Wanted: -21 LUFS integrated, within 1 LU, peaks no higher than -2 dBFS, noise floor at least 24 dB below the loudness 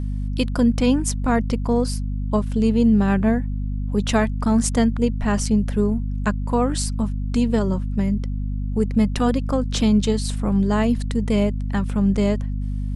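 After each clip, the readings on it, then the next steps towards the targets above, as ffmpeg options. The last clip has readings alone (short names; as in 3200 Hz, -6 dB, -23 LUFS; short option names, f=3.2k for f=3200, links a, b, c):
hum 50 Hz; harmonics up to 250 Hz; hum level -22 dBFS; loudness -21.5 LUFS; peak -5.0 dBFS; loudness target -21.0 LUFS
-> -af "bandreject=f=50:t=h:w=6,bandreject=f=100:t=h:w=6,bandreject=f=150:t=h:w=6,bandreject=f=200:t=h:w=6,bandreject=f=250:t=h:w=6"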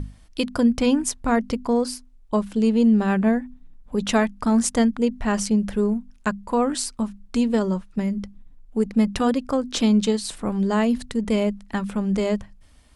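hum none; loudness -22.5 LUFS; peak -6.5 dBFS; loudness target -21.0 LUFS
-> -af "volume=1.5dB"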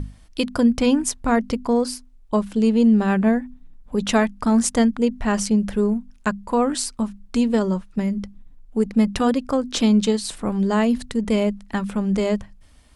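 loudness -21.0 LUFS; peak -5.0 dBFS; noise floor -49 dBFS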